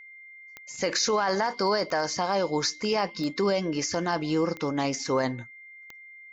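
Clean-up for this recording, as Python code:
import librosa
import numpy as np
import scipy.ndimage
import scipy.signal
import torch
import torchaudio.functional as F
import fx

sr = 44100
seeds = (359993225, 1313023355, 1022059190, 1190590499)

y = fx.fix_declip(x, sr, threshold_db=-16.5)
y = fx.fix_declick_ar(y, sr, threshold=10.0)
y = fx.notch(y, sr, hz=2100.0, q=30.0)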